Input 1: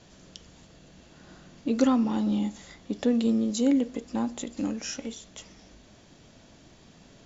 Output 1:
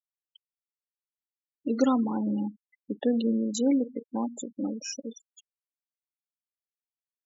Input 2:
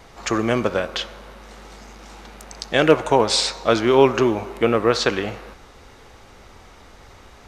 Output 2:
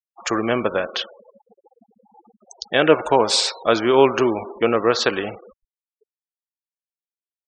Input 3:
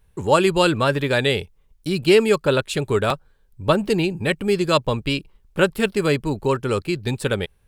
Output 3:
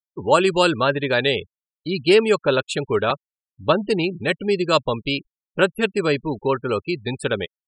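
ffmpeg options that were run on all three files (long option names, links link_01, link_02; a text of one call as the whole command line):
ffmpeg -i in.wav -af "lowshelf=frequency=140:gain=-11,afftfilt=real='re*gte(hypot(re,im),0.0316)':imag='im*gte(hypot(re,im),0.0316)':win_size=1024:overlap=0.75,bandreject=frequency=2100:width=20,volume=1dB" out.wav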